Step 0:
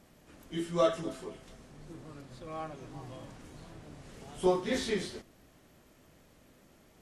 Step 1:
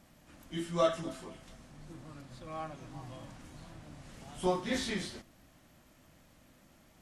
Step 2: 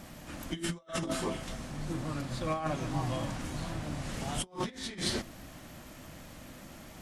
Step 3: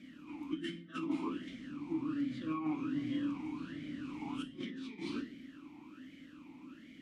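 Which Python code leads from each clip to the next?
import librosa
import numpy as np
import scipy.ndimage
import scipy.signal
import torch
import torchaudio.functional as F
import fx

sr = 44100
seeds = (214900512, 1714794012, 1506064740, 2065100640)

y1 = fx.peak_eq(x, sr, hz=420.0, db=-10.5, octaves=0.4)
y2 = fx.over_compress(y1, sr, threshold_db=-42.0, ratio=-0.5)
y2 = F.gain(torch.from_numpy(y2), 8.0).numpy()
y3 = fx.room_shoebox(y2, sr, seeds[0], volume_m3=67.0, walls='mixed', distance_m=0.37)
y3 = fx.vowel_sweep(y3, sr, vowels='i-u', hz=1.3)
y3 = F.gain(torch.from_numpy(y3), 5.5).numpy()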